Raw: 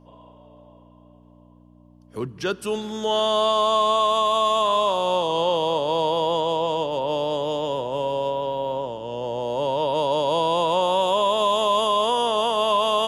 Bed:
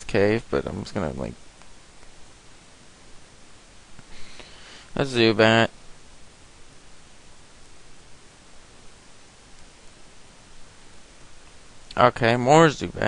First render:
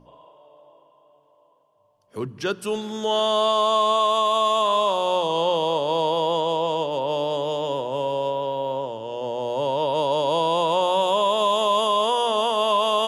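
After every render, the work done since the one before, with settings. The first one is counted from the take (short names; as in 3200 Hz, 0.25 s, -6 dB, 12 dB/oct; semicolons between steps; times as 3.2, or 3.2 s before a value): de-hum 60 Hz, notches 5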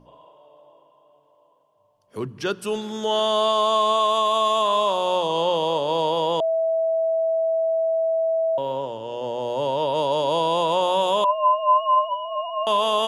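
6.4–8.58 bleep 652 Hz -18.5 dBFS; 11.24–12.67 sine-wave speech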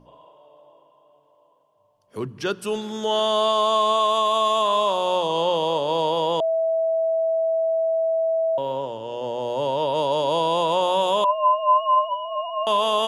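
nothing audible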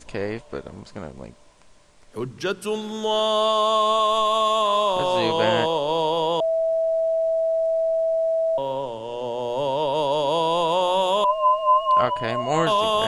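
add bed -8 dB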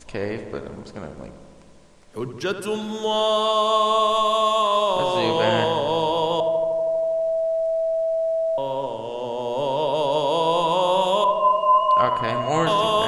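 darkening echo 80 ms, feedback 80%, low-pass 2600 Hz, level -10 dB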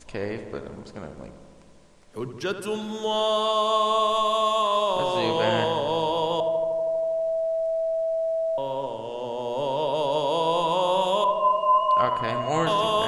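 gain -3 dB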